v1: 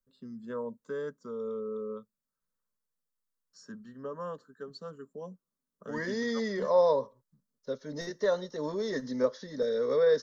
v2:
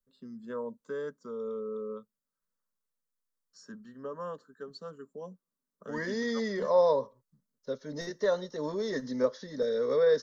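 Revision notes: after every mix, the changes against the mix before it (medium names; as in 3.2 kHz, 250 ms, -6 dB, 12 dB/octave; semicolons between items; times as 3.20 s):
first voice: add peaking EQ 65 Hz -15 dB 1.1 oct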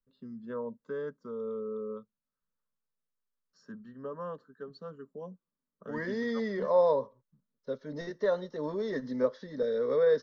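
first voice: add peaking EQ 65 Hz +15 dB 1.1 oct; master: add distance through air 200 m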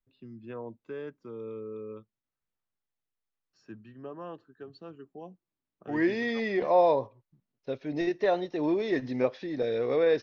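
first voice -4.5 dB; master: remove static phaser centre 500 Hz, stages 8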